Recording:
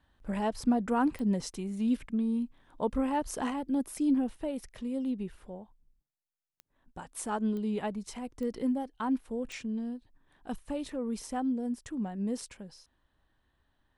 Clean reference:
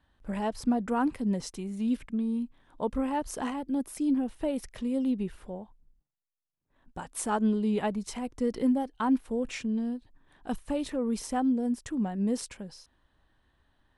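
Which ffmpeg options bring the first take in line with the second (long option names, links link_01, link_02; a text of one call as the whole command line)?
ffmpeg -i in.wav -af "adeclick=threshold=4,asetnsamples=nb_out_samples=441:pad=0,asendcmd='4.36 volume volume 4.5dB',volume=0dB" out.wav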